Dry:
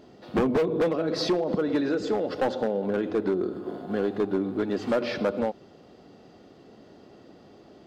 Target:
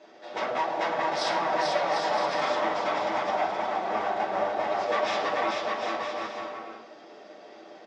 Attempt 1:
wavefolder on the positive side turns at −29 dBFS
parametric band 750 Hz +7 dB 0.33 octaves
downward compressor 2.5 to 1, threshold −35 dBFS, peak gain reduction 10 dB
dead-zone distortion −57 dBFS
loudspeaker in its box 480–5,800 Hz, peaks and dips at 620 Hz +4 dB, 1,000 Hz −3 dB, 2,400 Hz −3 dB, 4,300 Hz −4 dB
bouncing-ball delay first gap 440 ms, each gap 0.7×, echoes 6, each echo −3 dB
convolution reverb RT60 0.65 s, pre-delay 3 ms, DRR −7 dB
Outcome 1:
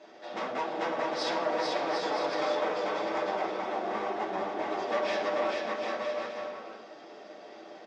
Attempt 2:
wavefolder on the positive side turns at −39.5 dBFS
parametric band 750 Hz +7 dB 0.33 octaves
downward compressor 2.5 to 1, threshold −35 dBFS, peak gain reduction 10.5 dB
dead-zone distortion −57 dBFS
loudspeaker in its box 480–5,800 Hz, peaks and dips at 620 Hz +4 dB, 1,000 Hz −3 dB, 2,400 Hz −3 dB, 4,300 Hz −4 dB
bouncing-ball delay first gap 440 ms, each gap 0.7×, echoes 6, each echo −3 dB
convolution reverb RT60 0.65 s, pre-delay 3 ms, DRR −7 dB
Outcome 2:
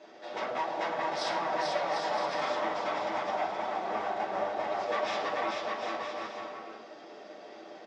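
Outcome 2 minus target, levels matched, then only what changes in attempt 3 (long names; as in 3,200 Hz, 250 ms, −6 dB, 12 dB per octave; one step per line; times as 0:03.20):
downward compressor: peak gain reduction +4.5 dB
change: downward compressor 2.5 to 1, threshold −27.5 dBFS, peak gain reduction 6 dB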